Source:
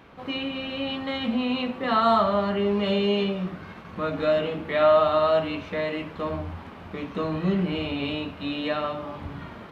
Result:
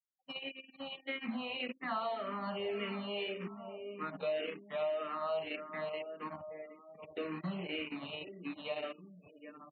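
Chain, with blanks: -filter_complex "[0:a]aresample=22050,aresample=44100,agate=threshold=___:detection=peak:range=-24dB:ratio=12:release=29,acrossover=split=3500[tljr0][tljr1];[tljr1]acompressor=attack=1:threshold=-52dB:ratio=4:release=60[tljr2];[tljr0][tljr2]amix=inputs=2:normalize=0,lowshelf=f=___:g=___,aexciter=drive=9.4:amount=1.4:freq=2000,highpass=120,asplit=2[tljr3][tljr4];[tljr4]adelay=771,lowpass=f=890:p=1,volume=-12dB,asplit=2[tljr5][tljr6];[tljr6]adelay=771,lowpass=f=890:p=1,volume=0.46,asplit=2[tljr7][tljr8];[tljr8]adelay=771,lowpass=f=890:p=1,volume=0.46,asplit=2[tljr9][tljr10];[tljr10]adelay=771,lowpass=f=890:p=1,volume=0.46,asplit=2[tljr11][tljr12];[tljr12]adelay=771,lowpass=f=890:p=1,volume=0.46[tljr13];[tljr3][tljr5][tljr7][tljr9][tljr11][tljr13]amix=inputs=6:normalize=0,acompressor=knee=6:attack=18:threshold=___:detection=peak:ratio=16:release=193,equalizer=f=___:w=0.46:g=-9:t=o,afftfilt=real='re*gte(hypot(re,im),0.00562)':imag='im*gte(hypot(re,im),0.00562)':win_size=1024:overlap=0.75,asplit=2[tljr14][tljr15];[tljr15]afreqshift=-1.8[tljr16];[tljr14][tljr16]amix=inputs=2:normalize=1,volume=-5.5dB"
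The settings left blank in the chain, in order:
-32dB, 180, -11.5, -25dB, 3700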